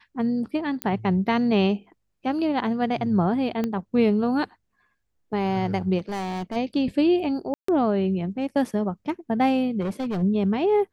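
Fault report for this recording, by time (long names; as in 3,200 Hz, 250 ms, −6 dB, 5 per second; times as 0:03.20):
0:00.82: click −11 dBFS
0:03.64: click −14 dBFS
0:05.98–0:06.57: clipping −26 dBFS
0:07.54–0:07.68: drop-out 144 ms
0:09.80–0:10.23: clipping −24 dBFS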